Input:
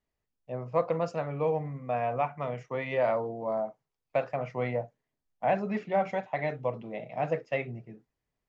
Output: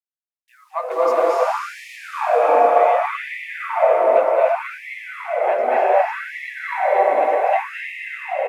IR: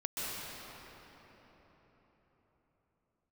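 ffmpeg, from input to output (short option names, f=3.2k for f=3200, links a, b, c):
-filter_complex "[0:a]asettb=1/sr,asplit=3[a][b][c];[a]atrim=end=0.914[d];[b]atrim=start=0.91:end=1.96,asetpts=PTS-STARTPTS,afade=t=in:d=0.004:c=qsin,afade=t=out:st=1.046:d=0.004:c=qsin,aeval=exprs='val(0)+0.5*0.015*sgn(val(0))':c=same[e];[c]atrim=start=1.956[f];[d][e]acrossfade=d=0.004:c1=hsin:c2=qsin[g];[g][f]acrossfade=d=0.004:c1=qsin:c2=hsin,equalizer=f=990:t=o:w=2.7:g=7,bandreject=f=95.01:t=h:w=4,bandreject=f=190.02:t=h:w=4,bandreject=f=285.03:t=h:w=4,bandreject=f=380.04:t=h:w=4,bandreject=f=475.05:t=h:w=4,bandreject=f=570.06:t=h:w=4,bandreject=f=665.07:t=h:w=4,bandreject=f=760.08:t=h:w=4,bandreject=f=855.09:t=h:w=4,bandreject=f=950.1:t=h:w=4,acrossover=split=200|300|2700[h][i][j][k];[i]acompressor=threshold=-59dB:ratio=6[l];[j]aphaser=in_gain=1:out_gain=1:delay=3.6:decay=0.41:speed=0.67:type=triangular[m];[h][l][m][k]amix=inputs=4:normalize=0,acrusher=bits=9:mix=0:aa=0.000001,aecho=1:1:279|558|837|1116|1395|1674|1953:0.376|0.218|0.126|0.0733|0.0425|0.0247|0.0143[n];[1:a]atrim=start_sample=2205,asetrate=26019,aresample=44100[o];[n][o]afir=irnorm=-1:irlink=0,afftfilt=real='re*gte(b*sr/1024,240*pow(1800/240,0.5+0.5*sin(2*PI*0.66*pts/sr)))':imag='im*gte(b*sr/1024,240*pow(1800/240,0.5+0.5*sin(2*PI*0.66*pts/sr)))':win_size=1024:overlap=0.75"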